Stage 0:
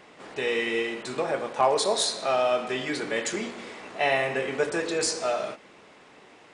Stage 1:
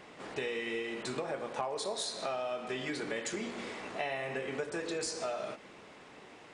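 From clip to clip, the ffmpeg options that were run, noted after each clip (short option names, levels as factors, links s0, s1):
-af "lowshelf=f=190:g=4,acompressor=threshold=0.0251:ratio=6,volume=0.841"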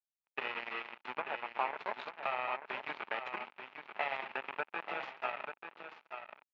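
-af "aresample=16000,acrusher=bits=4:mix=0:aa=0.5,aresample=44100,highpass=300,equalizer=f=310:t=q:w=4:g=-7,equalizer=f=470:t=q:w=4:g=-5,equalizer=f=880:t=q:w=4:g=8,equalizer=f=1300:t=q:w=4:g=4,equalizer=f=2500:t=q:w=4:g=6,lowpass=f=2800:w=0.5412,lowpass=f=2800:w=1.3066,aecho=1:1:887:0.398,volume=0.891"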